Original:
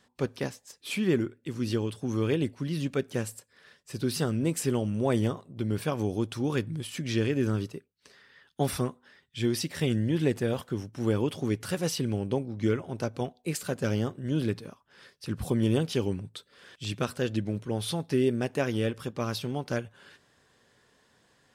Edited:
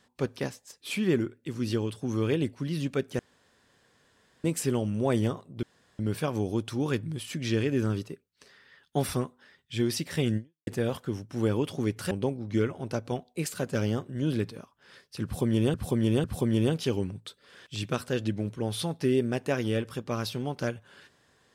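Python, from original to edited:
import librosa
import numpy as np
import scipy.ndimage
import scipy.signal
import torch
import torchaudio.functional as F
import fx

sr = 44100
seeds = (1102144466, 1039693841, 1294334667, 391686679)

y = fx.edit(x, sr, fx.room_tone_fill(start_s=3.19, length_s=1.25),
    fx.insert_room_tone(at_s=5.63, length_s=0.36),
    fx.fade_out_span(start_s=10.01, length_s=0.3, curve='exp'),
    fx.cut(start_s=11.75, length_s=0.45),
    fx.repeat(start_s=15.33, length_s=0.5, count=3), tone=tone)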